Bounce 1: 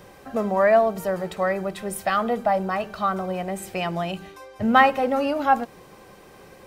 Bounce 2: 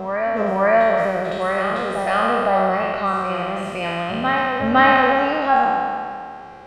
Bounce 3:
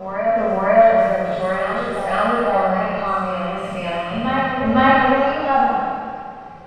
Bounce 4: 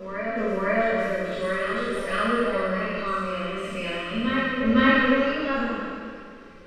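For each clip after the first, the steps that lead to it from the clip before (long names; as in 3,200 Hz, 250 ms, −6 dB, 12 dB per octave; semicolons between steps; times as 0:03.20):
peak hold with a decay on every bin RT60 2.28 s; low-pass filter 4,100 Hz 12 dB per octave; backwards echo 509 ms −6.5 dB; level −1 dB
rectangular room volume 400 cubic metres, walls furnished, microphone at 5.7 metres; level −9.5 dB
phaser with its sweep stopped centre 320 Hz, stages 4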